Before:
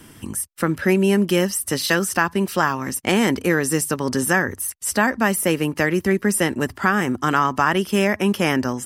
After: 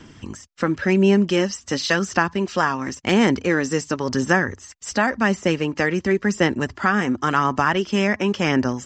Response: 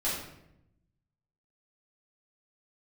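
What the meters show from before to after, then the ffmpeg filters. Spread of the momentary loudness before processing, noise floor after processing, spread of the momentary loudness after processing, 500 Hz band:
4 LU, -48 dBFS, 7 LU, -0.5 dB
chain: -af "aresample=16000,aresample=44100,aphaser=in_gain=1:out_gain=1:delay=4.3:decay=0.3:speed=0.93:type=sinusoidal,volume=0.891"

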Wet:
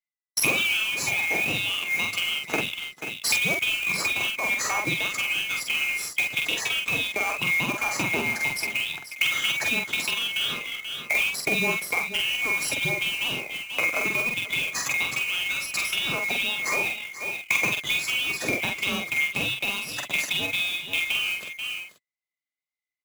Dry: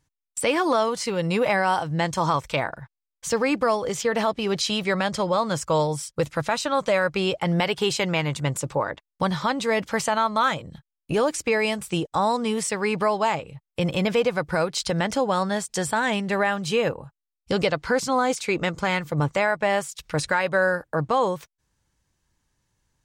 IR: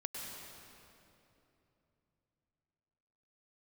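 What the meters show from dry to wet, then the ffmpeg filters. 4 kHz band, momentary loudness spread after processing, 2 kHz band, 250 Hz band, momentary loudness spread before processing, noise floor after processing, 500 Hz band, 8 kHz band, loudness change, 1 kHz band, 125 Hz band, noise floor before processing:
+5.5 dB, 5 LU, +5.0 dB, -11.0 dB, 6 LU, under -85 dBFS, -14.0 dB, +2.0 dB, -0.5 dB, -11.0 dB, -11.0 dB, -85 dBFS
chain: -filter_complex "[0:a]afftfilt=real='real(if(lt(b,920),b+92*(1-2*mod(floor(b/92),2)),b),0)':imag='imag(if(lt(b,920),b+92*(1-2*mod(floor(b/92),2)),b),0)':win_size=2048:overlap=0.75,agate=range=0.0224:threshold=0.00708:ratio=3:detection=peak,highpass=f=110:w=0.5412,highpass=f=110:w=1.3066,lowshelf=f=240:g=2.5,aecho=1:1:484:0.126,acompressor=threshold=0.0398:ratio=12,acrusher=bits=2:mode=log:mix=0:aa=0.000001,asplit=2[s0][s1];[s1]adelay=46,volume=0.668[s2];[s0][s2]amix=inputs=2:normalize=0,acontrast=84,adynamicequalizer=threshold=0.0178:dfrequency=1600:dqfactor=0.7:tfrequency=1600:tqfactor=0.7:attack=5:release=100:ratio=0.375:range=2.5:mode=cutabove:tftype=highshelf"

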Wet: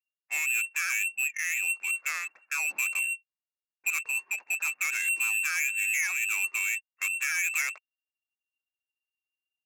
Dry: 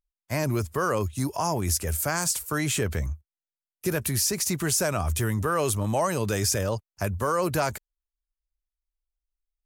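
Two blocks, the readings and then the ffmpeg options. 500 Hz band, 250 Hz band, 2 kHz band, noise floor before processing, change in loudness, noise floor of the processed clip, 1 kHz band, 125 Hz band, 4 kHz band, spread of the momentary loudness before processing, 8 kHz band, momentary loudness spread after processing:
under -30 dB, under -40 dB, +8.0 dB, under -85 dBFS, -1.0 dB, under -85 dBFS, -15.0 dB, under -40 dB, -8.5 dB, 7 LU, -3.5 dB, 6 LU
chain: -af "lowpass=f=2400:t=q:w=0.5098,lowpass=f=2400:t=q:w=0.6013,lowpass=f=2400:t=q:w=0.9,lowpass=f=2400:t=q:w=2.563,afreqshift=-2800,asoftclip=type=tanh:threshold=0.133,adynamicsmooth=sensitivity=4.5:basefreq=2200,aderivative,volume=2.37"

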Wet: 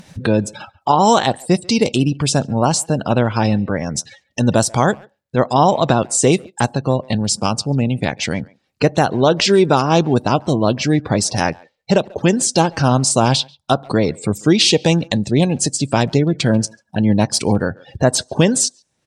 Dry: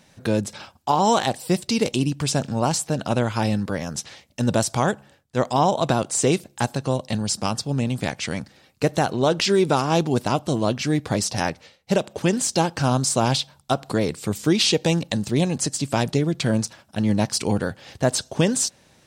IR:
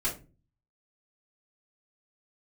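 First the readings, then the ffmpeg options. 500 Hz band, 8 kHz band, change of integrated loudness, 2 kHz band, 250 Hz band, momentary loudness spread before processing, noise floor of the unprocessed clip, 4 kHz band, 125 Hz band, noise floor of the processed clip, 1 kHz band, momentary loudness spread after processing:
+6.0 dB, +5.5 dB, +6.0 dB, +5.5 dB, +6.0 dB, 7 LU, -57 dBFS, +5.5 dB, +6.0 dB, -68 dBFS, +6.0 dB, 7 LU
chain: -filter_complex "[0:a]afftdn=nr=30:nf=-37,acompressor=mode=upward:threshold=0.0708:ratio=2.5,asplit=2[s0][s1];[s1]adelay=140,highpass=300,lowpass=3400,asoftclip=type=hard:threshold=0.168,volume=0.0631[s2];[s0][s2]amix=inputs=2:normalize=0,volume=2" -ar 44100 -c:a sbc -b:a 128k

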